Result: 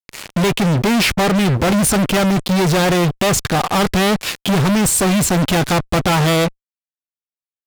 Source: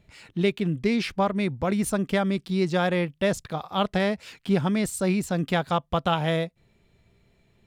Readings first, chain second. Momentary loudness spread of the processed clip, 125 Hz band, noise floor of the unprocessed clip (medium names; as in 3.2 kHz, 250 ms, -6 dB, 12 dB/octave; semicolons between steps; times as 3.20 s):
4 LU, +11.5 dB, -65 dBFS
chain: single-diode clipper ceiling -17.5 dBFS; fuzz box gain 44 dB, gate -44 dBFS